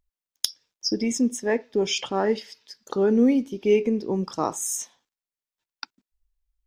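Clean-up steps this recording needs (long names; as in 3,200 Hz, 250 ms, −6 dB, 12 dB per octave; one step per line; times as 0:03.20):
clipped peaks rebuilt −6.5 dBFS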